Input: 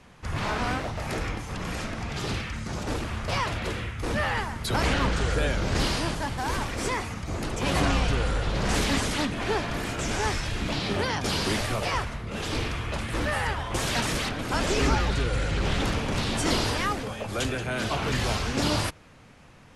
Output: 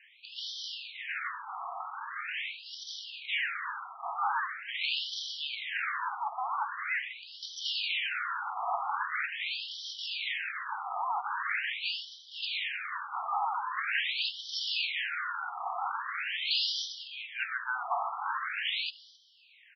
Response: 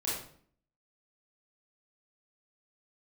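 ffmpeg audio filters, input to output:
-filter_complex "[0:a]afftfilt=real='re*lt(hypot(re,im),0.316)':imag='im*lt(hypot(re,im),0.316)':win_size=1024:overlap=0.75,asplit=2[s0][s1];[s1]adelay=268.2,volume=0.0794,highshelf=f=4000:g=-6.04[s2];[s0][s2]amix=inputs=2:normalize=0,afftfilt=real='re*between(b*sr/1024,930*pow(4300/930,0.5+0.5*sin(2*PI*0.43*pts/sr))/1.41,930*pow(4300/930,0.5+0.5*sin(2*PI*0.43*pts/sr))*1.41)':imag='im*between(b*sr/1024,930*pow(4300/930,0.5+0.5*sin(2*PI*0.43*pts/sr))/1.41,930*pow(4300/930,0.5+0.5*sin(2*PI*0.43*pts/sr))*1.41)':win_size=1024:overlap=0.75,volume=1.41"

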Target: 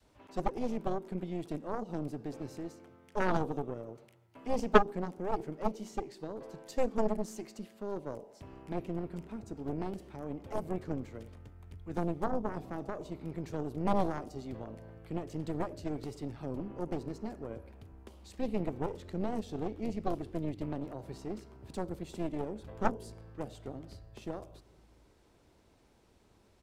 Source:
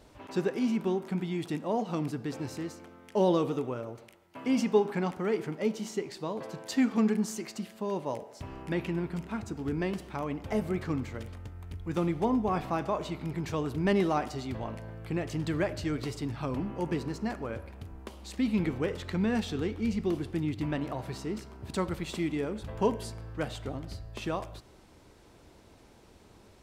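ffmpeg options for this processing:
-filter_complex "[0:a]acrossover=split=100|700|4600[s0][s1][s2][s3];[s0]aecho=1:1:458:0.501[s4];[s2]acompressor=threshold=0.00398:ratio=6[s5];[s4][s1][s5][s3]amix=inputs=4:normalize=0,adynamicequalizer=threshold=0.00708:dfrequency=400:dqfactor=0.77:tfrequency=400:tqfactor=0.77:attack=5:release=100:ratio=0.375:range=3:mode=boostabove:tftype=bell,aeval=exprs='0.376*(cos(1*acos(clip(val(0)/0.376,-1,1)))-cos(1*PI/2))+0.168*(cos(3*acos(clip(val(0)/0.376,-1,1)))-cos(3*PI/2))+0.0841*(cos(6*acos(clip(val(0)/0.376,-1,1)))-cos(6*PI/2))+0.0376*(cos(8*acos(clip(val(0)/0.376,-1,1)))-cos(8*PI/2))':c=same"

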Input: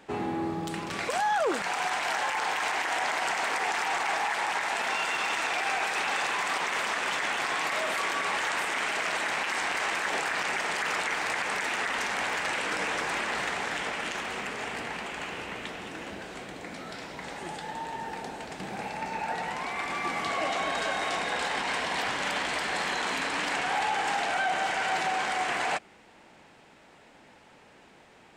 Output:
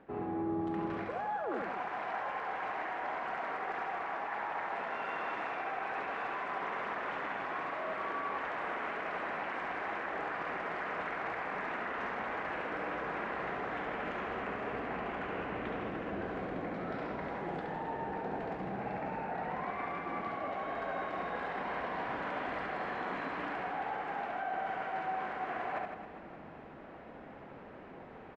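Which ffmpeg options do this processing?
-af "lowpass=1300,bandreject=f=880:w=12,areverse,acompressor=threshold=0.00794:ratio=10,areverse,aecho=1:1:70|157.5|266.9|403.6|574.5:0.631|0.398|0.251|0.158|0.1,volume=1.88"

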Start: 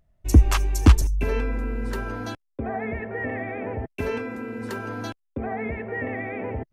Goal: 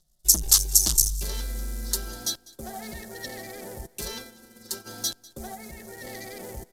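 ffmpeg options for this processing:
-filter_complex "[0:a]asplit=3[s0][s1][s2];[s0]afade=t=out:st=4.16:d=0.02[s3];[s1]agate=range=0.251:threshold=0.0316:ratio=16:detection=peak,afade=t=in:st=4.16:d=0.02,afade=t=out:st=4.85:d=0.02[s4];[s2]afade=t=in:st=4.85:d=0.02[s5];[s3][s4][s5]amix=inputs=3:normalize=0,acrossover=split=690|5400[s6][s7][s8];[s8]acrusher=bits=7:mix=0:aa=0.000001[s9];[s6][s7][s9]amix=inputs=3:normalize=0,aecho=1:1:5.5:0.89,asplit=3[s10][s11][s12];[s10]afade=t=out:st=5.54:d=0.02[s13];[s11]acompressor=threshold=0.0355:ratio=6,afade=t=in:st=5.54:d=0.02,afade=t=out:st=6.03:d=0.02[s14];[s12]afade=t=in:st=6.03:d=0.02[s15];[s13][s14][s15]amix=inputs=3:normalize=0,acrusher=bits=9:mode=log:mix=0:aa=0.000001,asoftclip=type=tanh:threshold=0.1,asubboost=boost=2.5:cutoff=100,aexciter=amount=12.6:drive=9.5:freq=3900,asplit=2[s16][s17];[s17]aecho=0:1:198|396|594|792:0.0794|0.0413|0.0215|0.0112[s18];[s16][s18]amix=inputs=2:normalize=0,aresample=32000,aresample=44100,volume=0.355"

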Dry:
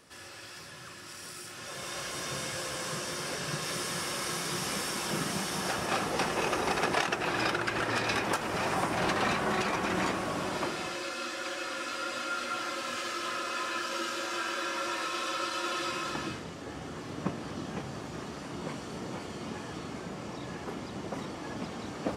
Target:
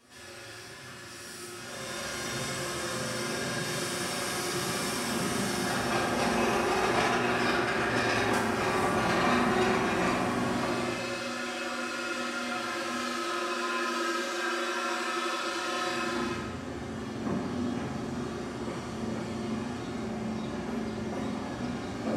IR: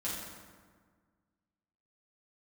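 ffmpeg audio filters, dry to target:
-filter_complex "[0:a]asettb=1/sr,asplit=3[s0][s1][s2];[s0]atrim=end=12.954[s3];[s1]atrim=start=12.95:end=15.46,asetpts=PTS-STARTPTS,afade=t=in:d=0.004:c=qsin,afade=t=out:st=2.506:d=0.004:c=qsin,highpass=170[s4];[s2]atrim=start=15.456[s5];[s3][s4]acrossfade=d=0.004:c1=hsin:c2=qsin[s6];[s6][s5]acrossfade=d=0.004:c1=qsin:c2=hsin[s7];[1:a]atrim=start_sample=2205,asetrate=52920,aresample=44100[s8];[s7][s8]afir=irnorm=-1:irlink=0"

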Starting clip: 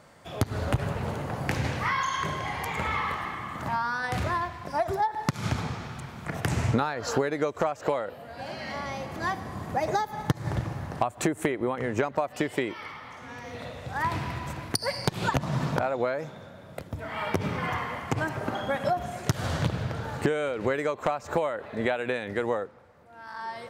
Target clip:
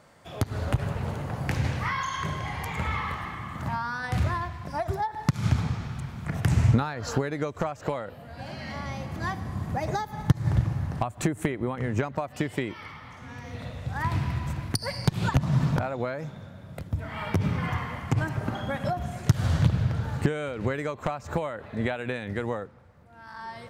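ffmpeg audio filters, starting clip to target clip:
-af "asubboost=boost=3:cutoff=220,volume=0.794"

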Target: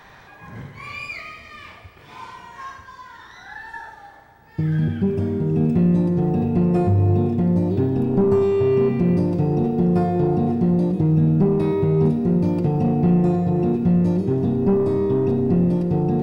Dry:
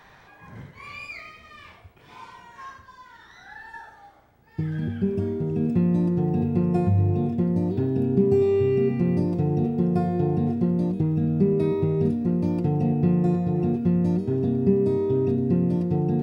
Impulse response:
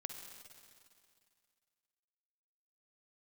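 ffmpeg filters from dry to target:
-filter_complex "[0:a]asoftclip=type=tanh:threshold=0.158,asplit=2[s0][s1];[1:a]atrim=start_sample=2205[s2];[s1][s2]afir=irnorm=-1:irlink=0,volume=2.24[s3];[s0][s3]amix=inputs=2:normalize=0,volume=0.75"

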